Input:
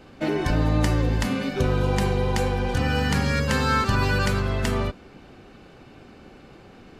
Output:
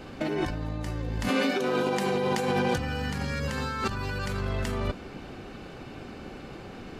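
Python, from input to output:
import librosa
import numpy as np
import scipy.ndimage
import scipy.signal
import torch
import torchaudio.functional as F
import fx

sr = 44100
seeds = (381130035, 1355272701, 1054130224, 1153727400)

y = fx.highpass(x, sr, hz=fx.line((1.28, 280.0), (2.76, 130.0)), slope=24, at=(1.28, 2.76), fade=0.02)
y = fx.over_compress(y, sr, threshold_db=-29.0, ratio=-1.0)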